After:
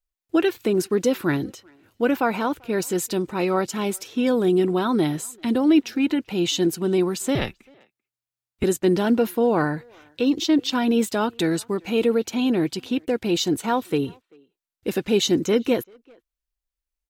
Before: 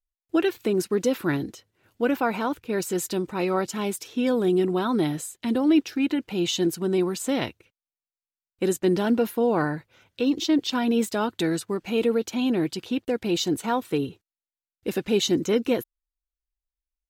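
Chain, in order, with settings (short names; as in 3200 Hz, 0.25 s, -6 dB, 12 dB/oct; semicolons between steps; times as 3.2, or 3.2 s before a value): 7.35–8.64 frequency shift -120 Hz; speakerphone echo 0.39 s, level -27 dB; gain +2.5 dB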